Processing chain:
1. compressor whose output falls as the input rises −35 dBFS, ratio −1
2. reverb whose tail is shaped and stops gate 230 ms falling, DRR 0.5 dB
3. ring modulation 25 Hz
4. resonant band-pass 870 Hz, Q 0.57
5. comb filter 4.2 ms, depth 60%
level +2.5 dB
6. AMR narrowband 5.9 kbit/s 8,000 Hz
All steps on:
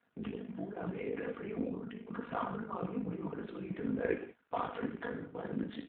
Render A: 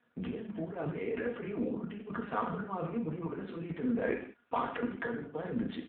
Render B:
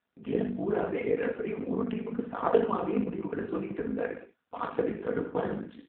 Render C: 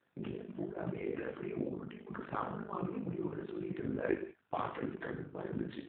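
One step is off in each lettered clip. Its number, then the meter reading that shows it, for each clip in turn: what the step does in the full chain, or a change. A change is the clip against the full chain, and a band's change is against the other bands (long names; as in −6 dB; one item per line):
3, change in crest factor −2.5 dB
1, change in crest factor +2.0 dB
5, 125 Hz band +2.0 dB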